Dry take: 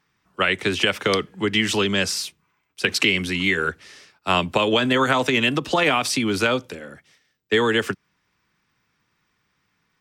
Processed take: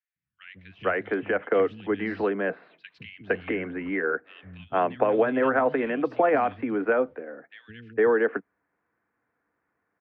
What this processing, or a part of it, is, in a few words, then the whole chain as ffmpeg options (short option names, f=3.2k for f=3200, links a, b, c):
bass cabinet: -filter_complex "[0:a]highpass=72,equalizer=f=110:t=q:w=4:g=-5,equalizer=f=160:t=q:w=4:g=-4,equalizer=f=290:t=q:w=4:g=7,equalizer=f=480:t=q:w=4:g=9,equalizer=f=700:t=q:w=4:g=10,equalizer=f=1.6k:t=q:w=4:g=5,lowpass=f=2k:w=0.5412,lowpass=f=2k:w=1.3066,asettb=1/sr,asplit=3[a][b][c];[a]atrim=end=2.034[d];[b]atrim=start=2.03:end=2.94,asetpts=PTS-STARTPTS,afade=t=in:d=0.004:c=qsin,afade=t=out:st=0.906:d=0.004:c=qsin,equalizer=f=160:t=o:w=0.33:g=7,equalizer=f=630:t=o:w=0.33:g=5,equalizer=f=4k:t=o:w=0.33:g=11,equalizer=f=6.3k:t=o:w=0.33:g=-4[e];[c]atrim=start=2.936[f];[d][e]acrossfade=d=0.004:c1=hsin:c2=qsin[g];[g][f]acrossfade=d=0.004:c1=qsin:c2=hsin,acrossover=split=160|2900[h][i][j];[h]adelay=160[k];[i]adelay=460[l];[k][l][j]amix=inputs=3:normalize=0,volume=-7.5dB"